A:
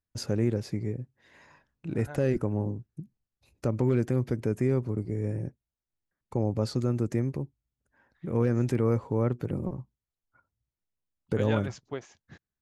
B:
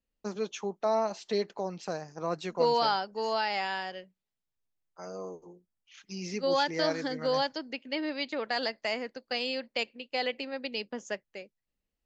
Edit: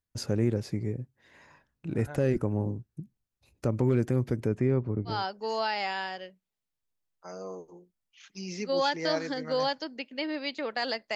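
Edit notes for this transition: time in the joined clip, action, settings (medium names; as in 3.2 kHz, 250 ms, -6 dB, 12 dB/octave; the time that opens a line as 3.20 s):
A
4.47–5.25 s: low-pass 4.8 kHz -> 1.5 kHz
5.15 s: go over to B from 2.89 s, crossfade 0.20 s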